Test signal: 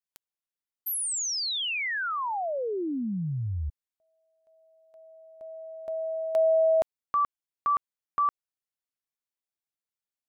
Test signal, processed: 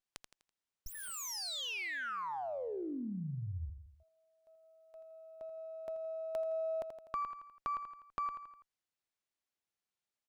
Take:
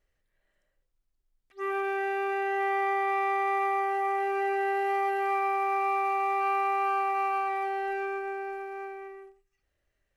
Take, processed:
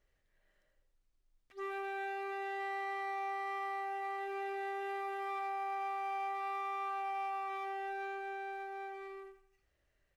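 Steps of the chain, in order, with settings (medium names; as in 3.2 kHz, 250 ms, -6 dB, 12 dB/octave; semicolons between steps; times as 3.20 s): feedback delay 83 ms, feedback 38%, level -9.5 dB; compression 2:1, threshold -46 dBFS; sliding maximum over 3 samples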